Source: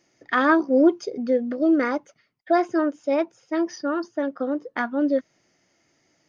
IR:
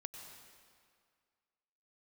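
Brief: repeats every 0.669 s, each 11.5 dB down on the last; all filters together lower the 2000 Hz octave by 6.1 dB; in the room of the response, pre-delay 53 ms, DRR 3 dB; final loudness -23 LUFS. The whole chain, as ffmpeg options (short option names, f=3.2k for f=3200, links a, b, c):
-filter_complex "[0:a]equalizer=f=2k:t=o:g=-8.5,aecho=1:1:669|1338|2007:0.266|0.0718|0.0194,asplit=2[a][b];[1:a]atrim=start_sample=2205,adelay=53[c];[b][c]afir=irnorm=-1:irlink=0,volume=0.5dB[d];[a][d]amix=inputs=2:normalize=0,volume=-1dB"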